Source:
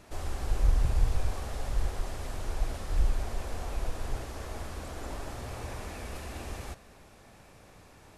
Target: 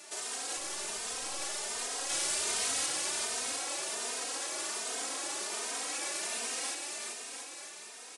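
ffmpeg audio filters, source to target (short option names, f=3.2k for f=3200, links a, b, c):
-filter_complex "[0:a]highpass=f=280:w=0.5412,highpass=f=280:w=1.3066,alimiter=level_in=11dB:limit=-24dB:level=0:latency=1:release=33,volume=-11dB,asettb=1/sr,asplit=3[a][b][c];[a]atrim=end=2.094[d];[b]atrim=start=2.09:end=2.86,asetpts=PTS-STARTPTS,afade=t=in:d=0.004:c=qsin,afade=t=out:st=0.766:d=0.004:c=qsin,acontrast=66[e];[c]atrim=start=2.856[f];[d][e]acrossfade=d=0.004:c1=hsin:c2=qsin[g];[g][f]acrossfade=d=0.004:c1=qsin:c2=hsin,aeval=exprs='0.0141*(abs(mod(val(0)/0.0141+3,4)-2)-1)':c=same,crystalizer=i=8:c=0,asettb=1/sr,asplit=3[h][i][j];[h]atrim=end=0.574[k];[i]atrim=start=0.57:end=1.41,asetpts=PTS-STARTPTS,afade=t=in:d=0.004:c=qsin,afade=t=out:st=0.836:d=0.004:c=qsin,aeval=exprs='clip(val(0),-1,0.0119)':c=same[l];[j]atrim=start=1.406[m];[k][l]acrossfade=d=0.004:c1=hsin:c2=qsin[n];[n][m]acrossfade=d=0.004:c1=qsin:c2=hsin,asplit=2[o][p];[p]aecho=0:1:390|702|951.6|1151|1311:0.631|0.398|0.251|0.158|0.1[q];[o][q]amix=inputs=2:normalize=0,aresample=22050,aresample=44100,asplit=2[r][s];[s]adelay=3,afreqshift=1.3[t];[r][t]amix=inputs=2:normalize=1"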